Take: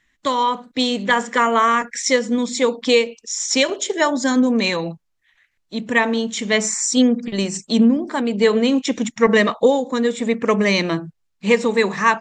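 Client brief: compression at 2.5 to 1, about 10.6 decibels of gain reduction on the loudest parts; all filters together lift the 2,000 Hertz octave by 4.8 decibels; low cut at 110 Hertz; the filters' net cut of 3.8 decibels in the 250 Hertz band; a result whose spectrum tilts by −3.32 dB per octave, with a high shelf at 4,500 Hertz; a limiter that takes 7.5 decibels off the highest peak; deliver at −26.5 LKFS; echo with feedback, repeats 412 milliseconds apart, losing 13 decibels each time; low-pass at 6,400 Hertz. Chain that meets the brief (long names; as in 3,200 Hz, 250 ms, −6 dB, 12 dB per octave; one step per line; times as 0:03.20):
high-pass filter 110 Hz
low-pass filter 6,400 Hz
parametric band 250 Hz −4 dB
parametric band 2,000 Hz +7 dB
high-shelf EQ 4,500 Hz −8 dB
downward compressor 2.5 to 1, threshold −25 dBFS
brickwall limiter −16.5 dBFS
repeating echo 412 ms, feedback 22%, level −13 dB
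level +1 dB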